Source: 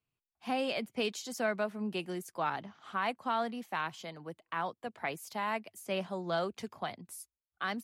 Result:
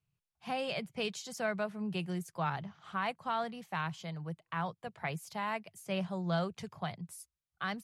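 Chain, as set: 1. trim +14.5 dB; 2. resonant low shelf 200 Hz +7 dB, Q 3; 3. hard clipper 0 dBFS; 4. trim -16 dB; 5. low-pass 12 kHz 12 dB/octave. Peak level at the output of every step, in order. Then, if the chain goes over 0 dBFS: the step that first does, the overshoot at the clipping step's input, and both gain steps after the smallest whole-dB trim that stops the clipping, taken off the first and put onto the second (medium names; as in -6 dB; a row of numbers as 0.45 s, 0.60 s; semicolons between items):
-6.0 dBFS, -5.0 dBFS, -5.0 dBFS, -21.0 dBFS, -21.0 dBFS; nothing clips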